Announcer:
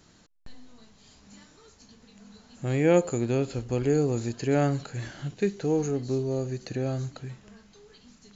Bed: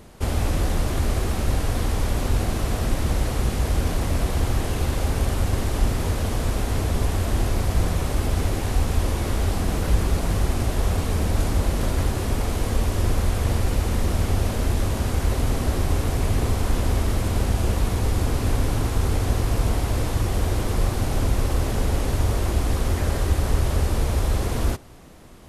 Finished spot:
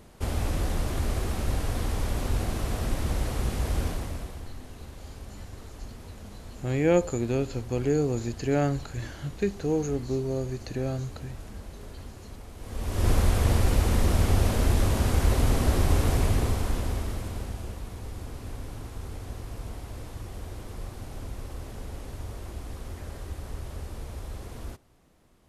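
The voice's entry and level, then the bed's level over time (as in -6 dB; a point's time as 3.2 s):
4.00 s, -1.0 dB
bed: 3.84 s -5.5 dB
4.51 s -20 dB
12.55 s -20 dB
13.09 s -0.5 dB
16.14 s -0.5 dB
17.81 s -16 dB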